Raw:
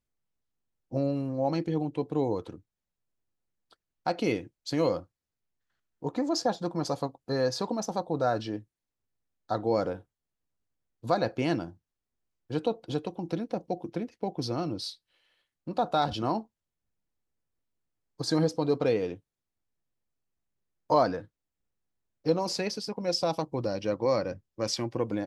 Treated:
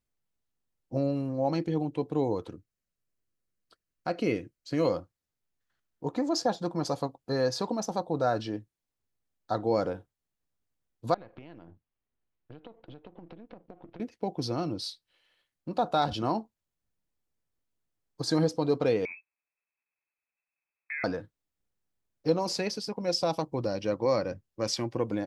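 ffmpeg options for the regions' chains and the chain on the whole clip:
ffmpeg -i in.wav -filter_complex "[0:a]asettb=1/sr,asplit=3[link_01][link_02][link_03];[link_01]atrim=end=2.504[link_04];[link_02]atrim=start=2.5:end=4.85,asetpts=PTS-STARTPTS,afade=type=in:duration=0.004:curve=qsin,afade=type=out:start_time=2.346:duration=0.004:curve=qsin,acrossover=split=3000[link_05][link_06];[link_06]acompressor=threshold=-46dB:ratio=4:attack=1:release=60[link_07];[link_05][link_07]amix=inputs=2:normalize=0,equalizer=frequency=850:width=5.9:gain=-13.5,bandreject=frequency=3500:width=8.3[link_08];[link_03]atrim=start=4.846[link_09];[link_04][link_08]acrossfade=duration=0.004:curve1=hsin:curve2=qsin[link_10];[link_10][link_09]acrossfade=duration=0.004:curve1=qsin:curve2=hsin,asettb=1/sr,asplit=3[link_11][link_12][link_13];[link_11]atrim=end=11.144[link_14];[link_12]atrim=start=11.14:end=14,asetpts=PTS-STARTPTS,afade=type=in:duration=0.004:curve=qsin,afade=type=out:start_time=2.856:duration=0.004:curve=qsin,aeval=exprs='if(lt(val(0),0),0.447*val(0),val(0))':channel_layout=same,lowpass=frequency=3300:width=0.5412,lowpass=frequency=3300:width=1.3066,acompressor=threshold=-42dB:ratio=16:attack=3.2:release=140:knee=1:detection=peak[link_15];[link_13]atrim=start=13.996[link_16];[link_14][link_15]acrossfade=duration=0.004:curve1=hsin:curve2=qsin[link_17];[link_17][link_16]acrossfade=duration=0.004:curve1=qsin:curve2=hsin,asettb=1/sr,asplit=3[link_18][link_19][link_20];[link_18]atrim=end=19.054[link_21];[link_19]atrim=start=19.05:end=21.04,asetpts=PTS-STARTPTS,afade=type=in:duration=0.004:curve=qsin,afade=type=out:start_time=1.986:duration=0.004:curve=qsin,highpass=56,acompressor=threshold=-37dB:ratio=3:attack=3.2:release=140:knee=1:detection=peak,lowpass=frequency=2300:width_type=q:width=0.5098,lowpass=frequency=2300:width_type=q:width=0.6013,lowpass=frequency=2300:width_type=q:width=0.9,lowpass=frequency=2300:width_type=q:width=2.563,afreqshift=-2700[link_22];[link_20]atrim=start=21.036[link_23];[link_21][link_22]acrossfade=duration=0.004:curve1=hsin:curve2=qsin[link_24];[link_24][link_23]acrossfade=duration=0.004:curve1=qsin:curve2=hsin" out.wav

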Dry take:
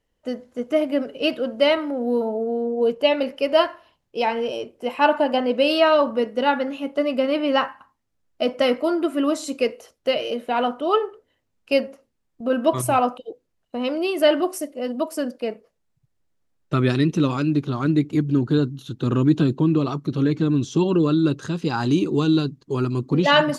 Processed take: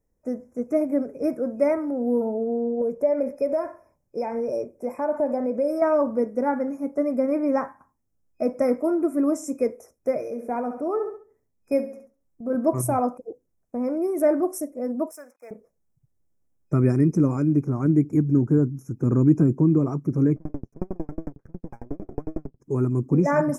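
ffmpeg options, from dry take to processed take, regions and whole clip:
ffmpeg -i in.wav -filter_complex "[0:a]asettb=1/sr,asplit=3[link_01][link_02][link_03];[link_01]atrim=end=2.814[link_04];[link_02]atrim=start=2.81:end=5.82,asetpts=PTS-STARTPTS,afade=type=in:duration=0.004:curve=qsin,afade=type=out:start_time=3.006:duration=0.004:curve=qsin,acompressor=threshold=-22dB:ratio=3:attack=3.2:release=140:knee=1:detection=peak,equalizer=frequency=580:width_type=o:width=0.21:gain=8.5[link_05];[link_03]atrim=start=5.816[link_06];[link_04][link_05]acrossfade=duration=0.004:curve1=hsin:curve2=qsin[link_07];[link_07][link_06]acrossfade=duration=0.004:curve1=qsin:curve2=hsin,asettb=1/sr,asplit=3[link_08][link_09][link_10];[link_08]atrim=end=10.194[link_11];[link_09]atrim=start=10.19:end=12.55,asetpts=PTS-STARTPTS,afade=type=in:duration=0.004:curve=qsin,afade=type=out:start_time=2.356:duration=0.004:curve=qsin,aecho=1:1:68|136|204|272:0.299|0.125|0.0527|0.0221,atrim=end_sample=104076,tremolo=f=3.3:d=0.4[link_12];[link_10]atrim=start=12.546[link_13];[link_11][link_12]acrossfade=duration=0.004:curve1=hsin:curve2=qsin[link_14];[link_14][link_13]acrossfade=duration=0.004:curve1=qsin:curve2=hsin,asettb=1/sr,asplit=3[link_15][link_16][link_17];[link_15]atrim=end=15.114[link_18];[link_16]atrim=start=15.11:end=15.51,asetpts=PTS-STARTPTS,afade=type=in:duration=0.004:curve=qsin,afade=type=out:start_time=0.396:duration=0.004:curve=qsin,highshelf=frequency=9300:gain=-6.5,aeval=exprs='sgn(val(0))*max(abs(val(0))-0.00299,0)':channel_layout=same,highpass=1200[link_19];[link_17]atrim=start=15.506[link_20];[link_18][link_19]acrossfade=duration=0.004:curve1=hsin:curve2=qsin[link_21];[link_21][link_20]acrossfade=duration=0.004:curve1=qsin:curve2=hsin,asettb=1/sr,asplit=3[link_22][link_23][link_24];[link_22]atrim=end=20.364[link_25];[link_23]atrim=start=20.36:end=22.6,asetpts=PTS-STARTPTS,afade=type=in:duration=0.004:curve=qsin,afade=type=out:start_time=2.236:duration=0.004:curve=qsin,lowpass=1200,aeval=exprs='max(val(0),0)':channel_layout=same,aeval=exprs='val(0)*pow(10,-39*if(lt(mod(11*n/s,1),2*abs(11)/1000),1-mod(11*n/s,1)/(2*abs(11)/1000),(mod(11*n/s,1)-2*abs(11)/1000)/(1-2*abs(11)/1000))/20)':channel_layout=same[link_26];[link_24]atrim=start=22.596[link_27];[link_25][link_26]acrossfade=duration=0.004:curve1=hsin:curve2=qsin[link_28];[link_28][link_27]acrossfade=duration=0.004:curve1=qsin:curve2=hsin,afftfilt=real='re*(1-between(b*sr/4096,2500,5100))':imag='im*(1-between(b*sr/4096,2500,5100))':win_size=4096:overlap=0.75,equalizer=frequency=2200:width=0.45:gain=-14,volume=1.5dB" out.wav

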